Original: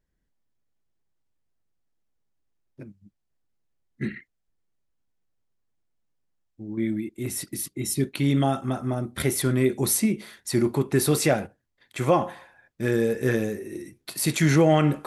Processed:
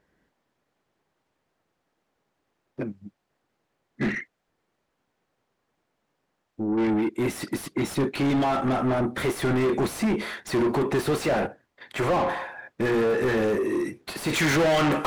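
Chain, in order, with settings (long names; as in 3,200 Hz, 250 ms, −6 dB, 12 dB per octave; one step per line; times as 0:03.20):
mid-hump overdrive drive 36 dB, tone 1,000 Hz, clips at −7 dBFS, from 0:14.33 tone 2,900 Hz
level −7.5 dB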